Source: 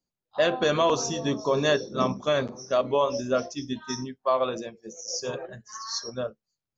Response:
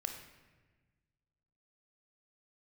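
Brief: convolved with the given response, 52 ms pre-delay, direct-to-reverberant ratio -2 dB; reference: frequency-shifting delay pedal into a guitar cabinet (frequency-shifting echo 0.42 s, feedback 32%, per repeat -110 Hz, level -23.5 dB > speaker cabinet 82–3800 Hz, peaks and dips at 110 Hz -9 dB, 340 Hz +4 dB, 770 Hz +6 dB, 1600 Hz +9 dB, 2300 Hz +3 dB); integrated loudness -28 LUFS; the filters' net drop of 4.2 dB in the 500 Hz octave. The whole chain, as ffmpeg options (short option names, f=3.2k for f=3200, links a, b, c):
-filter_complex "[0:a]equalizer=f=500:t=o:g=-7.5,asplit=2[a][b];[1:a]atrim=start_sample=2205,adelay=52[c];[b][c]afir=irnorm=-1:irlink=0,volume=2dB[d];[a][d]amix=inputs=2:normalize=0,asplit=3[e][f][g];[f]adelay=420,afreqshift=-110,volume=-23.5dB[h];[g]adelay=840,afreqshift=-220,volume=-33.4dB[i];[e][h][i]amix=inputs=3:normalize=0,highpass=82,equalizer=f=110:t=q:w=4:g=-9,equalizer=f=340:t=q:w=4:g=4,equalizer=f=770:t=q:w=4:g=6,equalizer=f=1.6k:t=q:w=4:g=9,equalizer=f=2.3k:t=q:w=4:g=3,lowpass=f=3.8k:w=0.5412,lowpass=f=3.8k:w=1.3066,volume=-4dB"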